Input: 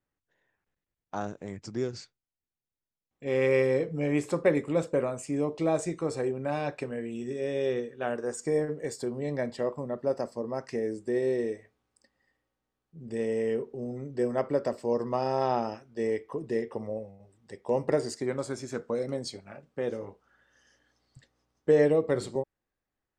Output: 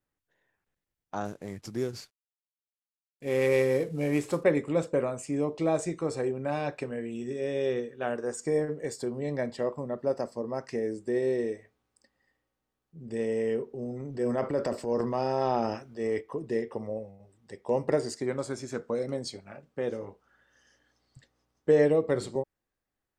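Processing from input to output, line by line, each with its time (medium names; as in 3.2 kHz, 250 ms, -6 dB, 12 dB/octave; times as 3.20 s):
1.25–4.44 s: CVSD coder 64 kbps
14.00–16.21 s: transient shaper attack -4 dB, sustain +7 dB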